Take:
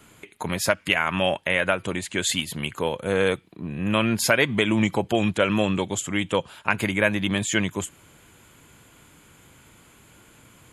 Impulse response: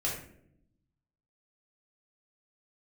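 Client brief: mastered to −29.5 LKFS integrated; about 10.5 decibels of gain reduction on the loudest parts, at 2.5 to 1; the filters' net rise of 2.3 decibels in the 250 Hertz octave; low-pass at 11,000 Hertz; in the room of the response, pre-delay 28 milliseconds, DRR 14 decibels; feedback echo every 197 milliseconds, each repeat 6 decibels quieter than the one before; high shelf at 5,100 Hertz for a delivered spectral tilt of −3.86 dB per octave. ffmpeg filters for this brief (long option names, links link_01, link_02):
-filter_complex "[0:a]lowpass=11000,equalizer=frequency=250:width_type=o:gain=3,highshelf=frequency=5100:gain=4,acompressor=threshold=-31dB:ratio=2.5,aecho=1:1:197|394|591|788|985|1182:0.501|0.251|0.125|0.0626|0.0313|0.0157,asplit=2[link_01][link_02];[1:a]atrim=start_sample=2205,adelay=28[link_03];[link_02][link_03]afir=irnorm=-1:irlink=0,volume=-19.5dB[link_04];[link_01][link_04]amix=inputs=2:normalize=0,volume=0.5dB"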